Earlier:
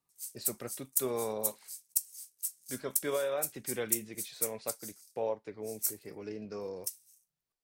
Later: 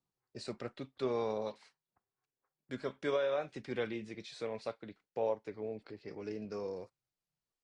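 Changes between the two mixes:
background: add Gaussian low-pass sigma 8.3 samples; master: add Bessel low-pass 7.3 kHz, order 4

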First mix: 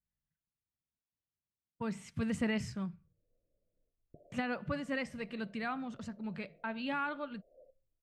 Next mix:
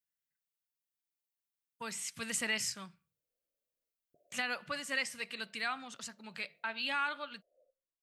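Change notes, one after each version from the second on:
background -6.5 dB; master: add tilt EQ +5.5 dB/octave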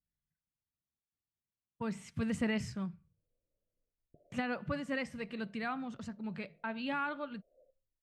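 master: add tilt EQ -5.5 dB/octave

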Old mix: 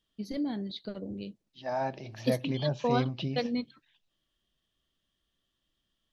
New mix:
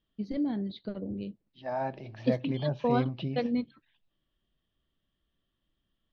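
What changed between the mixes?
first voice: add bass shelf 380 Hz +4 dB; master: add distance through air 230 m

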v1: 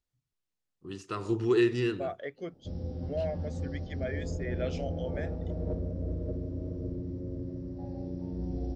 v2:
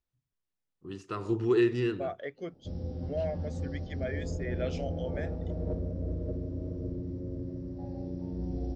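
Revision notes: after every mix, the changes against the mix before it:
first voice: add treble shelf 3.5 kHz -7.5 dB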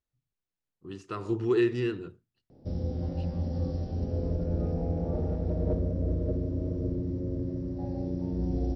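second voice: muted; background +5.0 dB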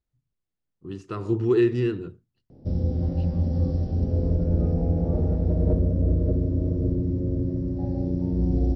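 master: add bass shelf 430 Hz +8 dB

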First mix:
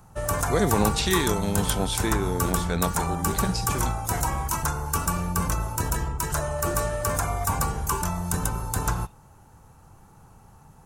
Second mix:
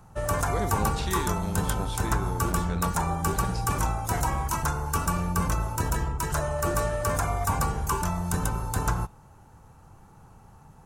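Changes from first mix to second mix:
speech -8.5 dB; master: add treble shelf 5.8 kHz -6 dB

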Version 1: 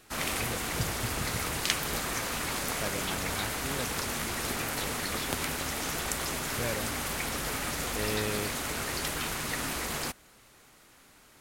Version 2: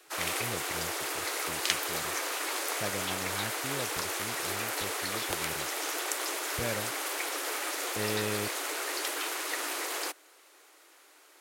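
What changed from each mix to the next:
background: add steep high-pass 300 Hz 96 dB/octave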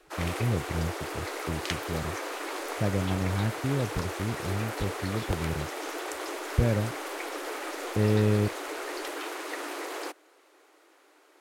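speech: add bass shelf 450 Hz +6.5 dB; master: add tilt EQ -3 dB/octave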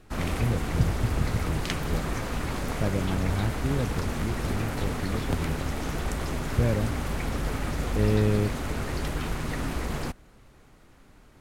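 background: remove steep high-pass 300 Hz 96 dB/octave

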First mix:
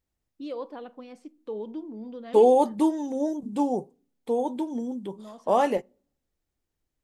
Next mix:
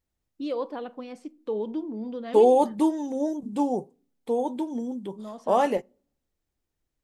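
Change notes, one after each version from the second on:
first voice +5.0 dB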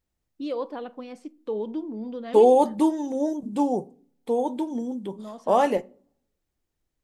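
second voice: send +11.5 dB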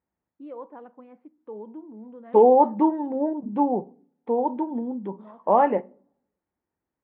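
first voice -9.5 dB; master: add cabinet simulation 110–2000 Hz, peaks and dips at 130 Hz -7 dB, 200 Hz +3 dB, 920 Hz +6 dB

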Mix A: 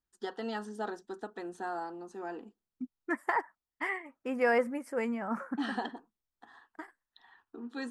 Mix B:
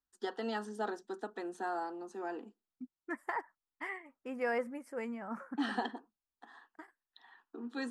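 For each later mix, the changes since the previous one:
first voice: add steep high-pass 200 Hz; second voice -7.0 dB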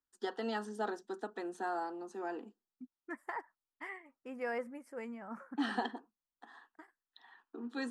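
second voice -4.0 dB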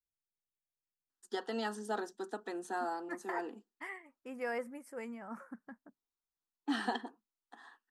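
first voice: entry +1.10 s; master: add treble shelf 6.8 kHz +11 dB

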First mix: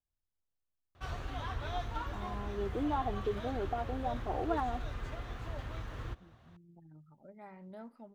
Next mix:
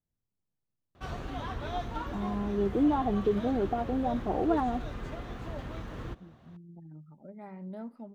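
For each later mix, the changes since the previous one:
first voice: add peaking EQ 130 Hz +9 dB 1.4 oct; master: add FFT filter 110 Hz 0 dB, 170 Hz +10 dB, 1.4 kHz +1 dB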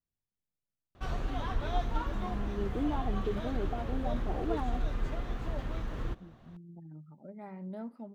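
first voice -8.0 dB; background: remove high-pass 59 Hz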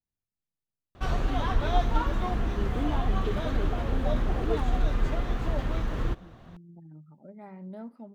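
background +7.0 dB

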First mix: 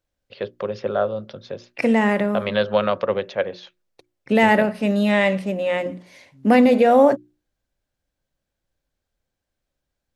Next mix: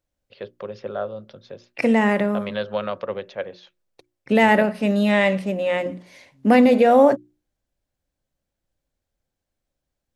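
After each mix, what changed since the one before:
first voice -6.5 dB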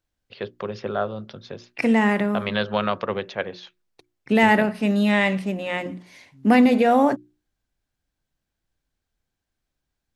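first voice +6.5 dB; master: add peaking EQ 550 Hz -9 dB 0.37 oct

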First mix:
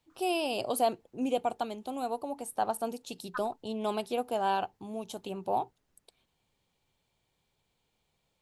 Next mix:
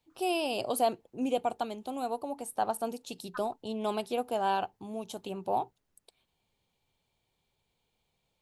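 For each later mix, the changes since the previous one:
second voice -4.5 dB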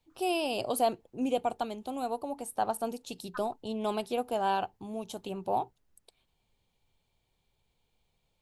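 master: add bass shelf 62 Hz +11.5 dB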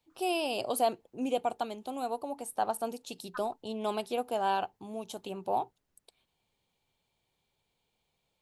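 first voice: add bass shelf 210 Hz -4.5 dB; master: add bass shelf 62 Hz -11.5 dB

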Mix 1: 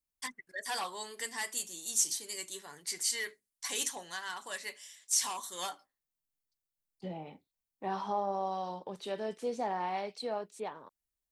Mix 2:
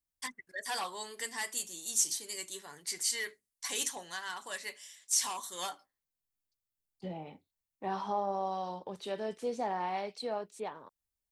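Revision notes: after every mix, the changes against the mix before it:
master: add peaking EQ 88 Hz +7 dB 0.36 oct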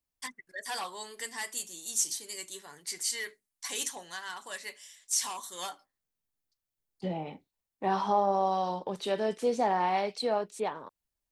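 second voice +7.0 dB; master: add peaking EQ 88 Hz -7 dB 0.36 oct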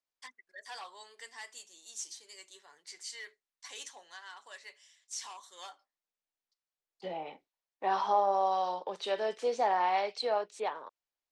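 first voice -8.0 dB; master: add three-band isolator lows -20 dB, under 390 Hz, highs -23 dB, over 7.5 kHz

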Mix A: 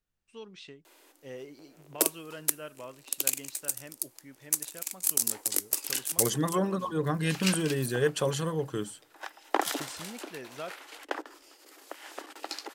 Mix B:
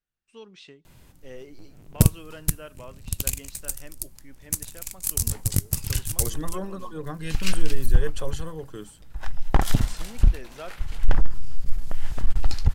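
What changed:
first voice: send on; second voice -5.5 dB; background: remove steep high-pass 290 Hz 72 dB/octave

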